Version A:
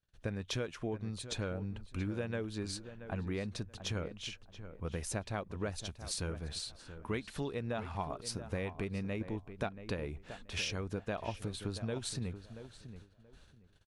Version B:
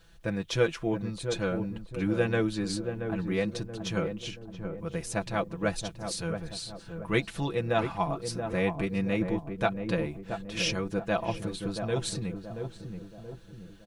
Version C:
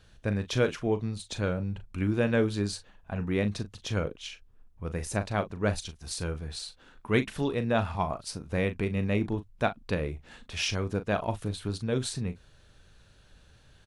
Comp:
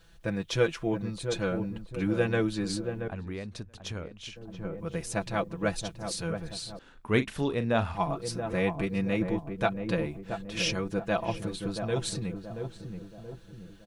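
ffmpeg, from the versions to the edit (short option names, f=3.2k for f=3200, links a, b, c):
-filter_complex "[1:a]asplit=3[a][b][c];[a]atrim=end=3.082[d];[0:a]atrim=start=3.078:end=4.362[e];[b]atrim=start=4.358:end=6.792[f];[2:a]atrim=start=6.788:end=7.942[g];[c]atrim=start=7.938[h];[d][e]acrossfade=d=0.004:c1=hsin:c2=hsin[i];[i][f]acrossfade=d=0.004:c1=hsin:c2=hsin[j];[j][g]acrossfade=d=0.004:c1=hsin:c2=hsin[k];[k][h]acrossfade=d=0.004:c1=hsin:c2=hsin"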